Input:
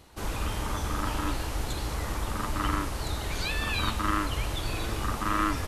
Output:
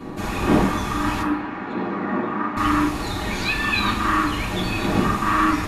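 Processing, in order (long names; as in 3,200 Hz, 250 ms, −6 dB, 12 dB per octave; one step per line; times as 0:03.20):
wind on the microphone 460 Hz −35 dBFS
0:01.22–0:02.57: Chebyshev band-pass filter 220–1,700 Hz, order 2
convolution reverb RT60 0.50 s, pre-delay 3 ms, DRR −6.5 dB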